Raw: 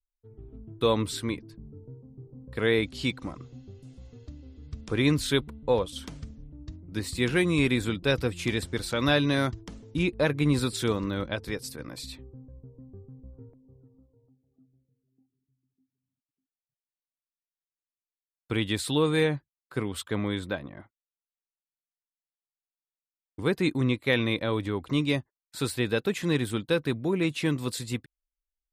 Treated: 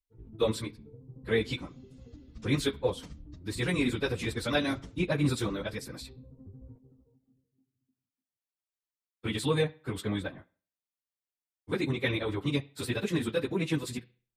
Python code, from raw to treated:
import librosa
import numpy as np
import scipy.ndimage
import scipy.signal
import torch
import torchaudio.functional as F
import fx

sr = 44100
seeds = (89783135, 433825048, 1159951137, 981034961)

y = fx.echo_bbd(x, sr, ms=65, stages=2048, feedback_pct=58, wet_db=-20.0)
y = fx.stretch_vocoder_free(y, sr, factor=0.5)